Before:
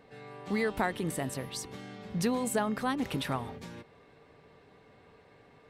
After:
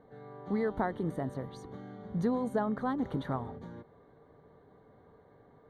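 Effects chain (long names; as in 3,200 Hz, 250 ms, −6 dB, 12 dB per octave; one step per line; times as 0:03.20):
moving average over 17 samples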